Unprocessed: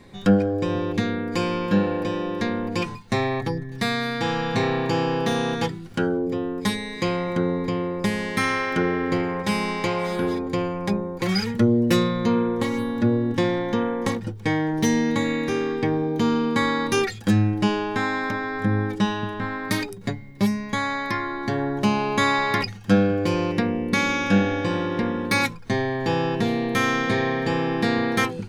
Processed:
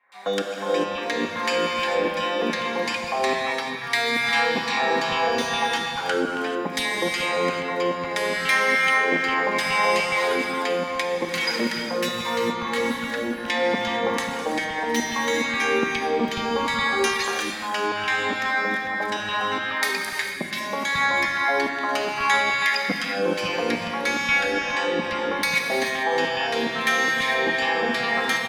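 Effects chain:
parametric band 350 Hz −12 dB 0.83 octaves
downward compressor, threshold −27 dBFS, peak gain reduction 11.5 dB
auto-filter high-pass saw down 2.4 Hz 260–2,900 Hz
three-band delay without the direct sound mids, highs, lows 120/540 ms, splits 160/1,200 Hz
reverb whose tail is shaped and stops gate 470 ms flat, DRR 1 dB
level +6.5 dB

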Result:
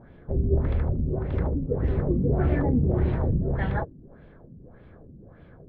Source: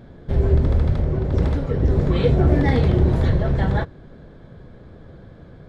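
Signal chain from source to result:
auto-filter low-pass sine 1.7 Hz 230–2,800 Hz
level −7 dB

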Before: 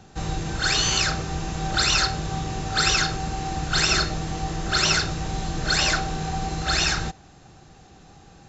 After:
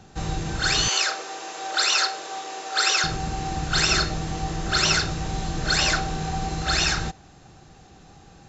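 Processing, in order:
0:00.88–0:03.04: high-pass filter 410 Hz 24 dB per octave

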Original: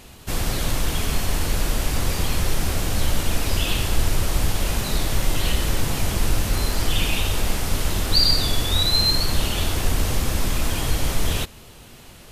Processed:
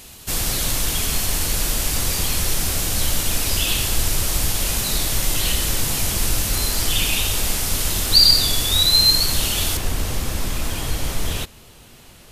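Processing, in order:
high-shelf EQ 3,200 Hz +12 dB, from 0:09.77 +2.5 dB
level −2 dB

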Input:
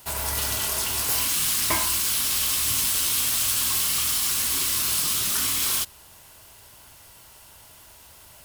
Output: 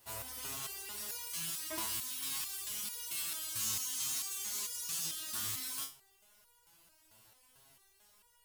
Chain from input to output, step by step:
0:03.59–0:05.06: parametric band 6,600 Hz +9 dB 0.43 octaves
step-sequenced resonator 4.5 Hz 110–480 Hz
level −3.5 dB

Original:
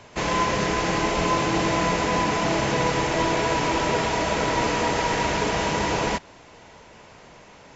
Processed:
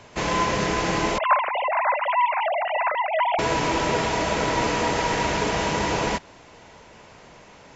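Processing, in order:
0:01.18–0:03.39: three sine waves on the formant tracks

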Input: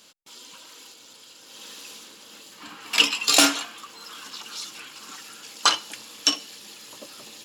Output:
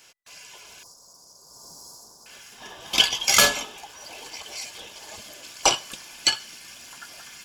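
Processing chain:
frequency inversion band by band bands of 2,000 Hz
0:00.83–0:02.26: Chebyshev band-stop filter 1,100–4,900 Hz, order 3

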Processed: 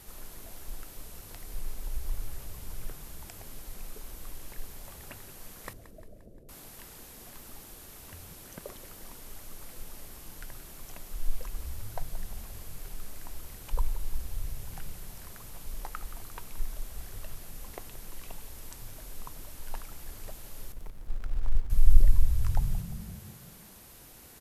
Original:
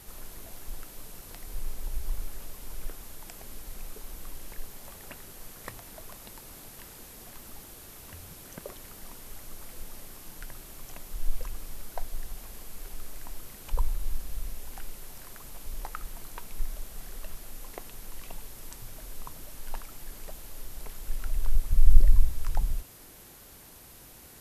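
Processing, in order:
0:05.73–0:06.49: Butterworth low-pass 660 Hz 72 dB per octave
0:20.72–0:21.70: slack as between gear wheels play −34 dBFS
echo with shifted repeats 175 ms, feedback 56%, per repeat −38 Hz, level −14 dB
level −1.5 dB

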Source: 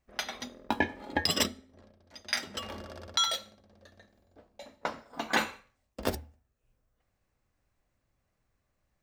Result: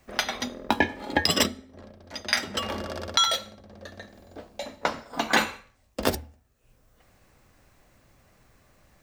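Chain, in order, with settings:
multiband upward and downward compressor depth 40%
level +7.5 dB

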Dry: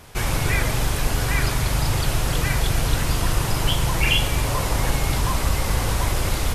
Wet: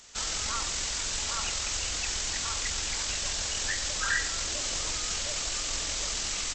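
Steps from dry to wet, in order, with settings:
first-order pre-emphasis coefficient 0.9
pitch shifter −9.5 semitones
level +1 dB

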